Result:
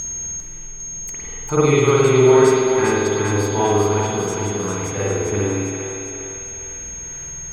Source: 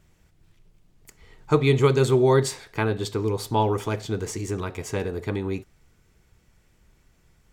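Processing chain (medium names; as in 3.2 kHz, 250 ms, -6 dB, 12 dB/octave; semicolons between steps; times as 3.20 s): spring tank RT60 1.5 s, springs 49 ms, chirp 65 ms, DRR -9.5 dB; upward compressor, threshold -21 dBFS; whistle 6.5 kHz -21 dBFS; on a send: thinning echo 401 ms, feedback 57%, high-pass 510 Hz, level -4 dB; on the sum: trim -4 dB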